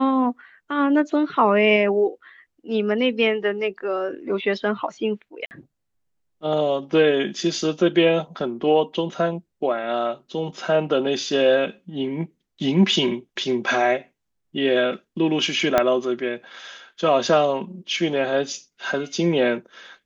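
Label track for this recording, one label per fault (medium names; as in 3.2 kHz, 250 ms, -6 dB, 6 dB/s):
5.460000	5.510000	dropout 49 ms
15.780000	15.780000	pop -4 dBFS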